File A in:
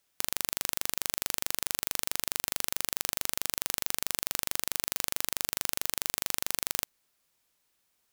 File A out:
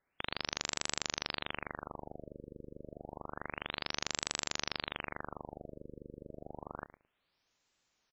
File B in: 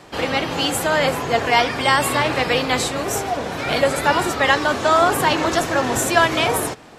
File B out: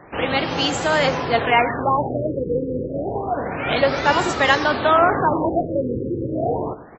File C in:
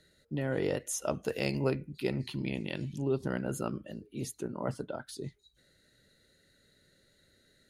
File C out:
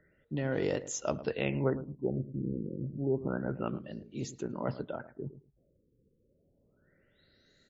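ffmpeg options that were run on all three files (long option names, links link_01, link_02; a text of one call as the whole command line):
ffmpeg -i in.wav -filter_complex "[0:a]asplit=2[link_01][link_02];[link_02]adelay=109,lowpass=frequency=910:poles=1,volume=-13dB,asplit=2[link_03][link_04];[link_04]adelay=109,lowpass=frequency=910:poles=1,volume=0.19[link_05];[link_01][link_03][link_05]amix=inputs=3:normalize=0,afftfilt=real='re*lt(b*sr/1024,520*pow(7900/520,0.5+0.5*sin(2*PI*0.29*pts/sr)))':imag='im*lt(b*sr/1024,520*pow(7900/520,0.5+0.5*sin(2*PI*0.29*pts/sr)))':win_size=1024:overlap=0.75" out.wav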